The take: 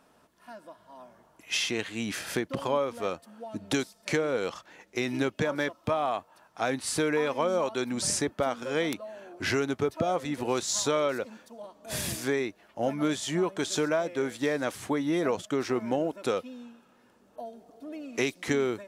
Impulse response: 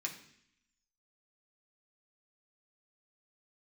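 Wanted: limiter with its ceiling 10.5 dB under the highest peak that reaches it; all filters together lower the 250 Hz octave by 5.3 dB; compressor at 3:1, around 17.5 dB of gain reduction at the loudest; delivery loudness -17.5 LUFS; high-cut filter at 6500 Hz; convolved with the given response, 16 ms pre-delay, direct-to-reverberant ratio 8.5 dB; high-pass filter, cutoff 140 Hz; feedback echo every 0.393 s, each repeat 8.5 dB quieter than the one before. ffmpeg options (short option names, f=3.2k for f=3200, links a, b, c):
-filter_complex "[0:a]highpass=140,lowpass=6.5k,equalizer=f=250:t=o:g=-6.5,acompressor=threshold=-49dB:ratio=3,alimiter=level_in=12dB:limit=-24dB:level=0:latency=1,volume=-12dB,aecho=1:1:393|786|1179|1572:0.376|0.143|0.0543|0.0206,asplit=2[a][b];[1:a]atrim=start_sample=2205,adelay=16[c];[b][c]afir=irnorm=-1:irlink=0,volume=-9dB[d];[a][d]amix=inputs=2:normalize=0,volume=30dB"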